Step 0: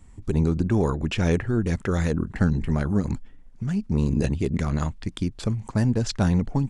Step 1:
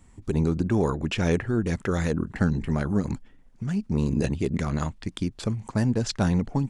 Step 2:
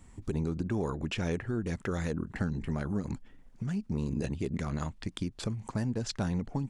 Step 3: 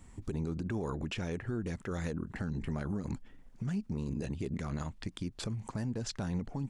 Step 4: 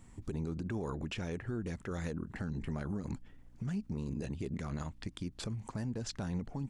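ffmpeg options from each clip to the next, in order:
ffmpeg -i in.wav -af "lowshelf=frequency=86:gain=-8" out.wav
ffmpeg -i in.wav -af "acompressor=threshold=-35dB:ratio=2" out.wav
ffmpeg -i in.wav -af "alimiter=level_in=3.5dB:limit=-24dB:level=0:latency=1:release=75,volume=-3.5dB" out.wav
ffmpeg -i in.wav -af "aeval=exprs='val(0)+0.00112*(sin(2*PI*60*n/s)+sin(2*PI*2*60*n/s)/2+sin(2*PI*3*60*n/s)/3+sin(2*PI*4*60*n/s)/4+sin(2*PI*5*60*n/s)/5)':channel_layout=same,volume=-2dB" out.wav

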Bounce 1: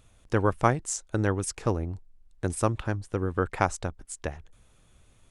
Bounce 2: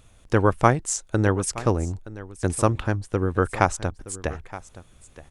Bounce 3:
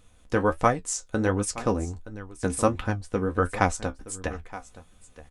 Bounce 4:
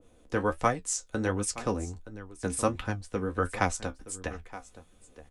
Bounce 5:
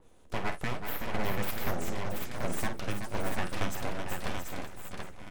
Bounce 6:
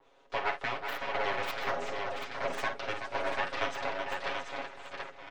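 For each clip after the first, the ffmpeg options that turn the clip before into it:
ffmpeg -i in.wav -af "aecho=1:1:921:0.141,volume=5dB" out.wav
ffmpeg -i in.wav -af "aecho=1:1:4:0.38,dynaudnorm=framelen=460:gausssize=5:maxgain=11.5dB,flanger=delay=9.6:depth=6.1:regen=44:speed=1.4:shape=triangular" out.wav
ffmpeg -i in.wav -filter_complex "[0:a]acrossover=split=370|400|2000[link_01][link_02][link_03][link_04];[link_02]acompressor=mode=upward:threshold=-42dB:ratio=2.5[link_05];[link_01][link_05][link_03][link_04]amix=inputs=4:normalize=0,adynamicequalizer=threshold=0.0126:dfrequency=1700:dqfactor=0.7:tfrequency=1700:tqfactor=0.7:attack=5:release=100:ratio=0.375:range=2:mode=boostabove:tftype=highshelf,volume=-5dB" out.wav
ffmpeg -i in.wav -filter_complex "[0:a]alimiter=limit=-19dB:level=0:latency=1:release=170,aeval=exprs='abs(val(0))':channel_layout=same,asplit=2[link_01][link_02];[link_02]aecho=0:1:50|378|675|735:0.335|0.422|0.398|0.596[link_03];[link_01][link_03]amix=inputs=2:normalize=0" out.wav
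ffmpeg -i in.wav -filter_complex "[0:a]aecho=1:1:7.3:0.93,acrossover=split=460|7700[link_01][link_02][link_03];[link_03]acrusher=bits=4:mix=0:aa=0.5[link_04];[link_01][link_02][link_04]amix=inputs=3:normalize=0,acrossover=split=400 5200:gain=0.112 1 0.178[link_05][link_06][link_07];[link_05][link_06][link_07]amix=inputs=3:normalize=0,volume=1.5dB" out.wav

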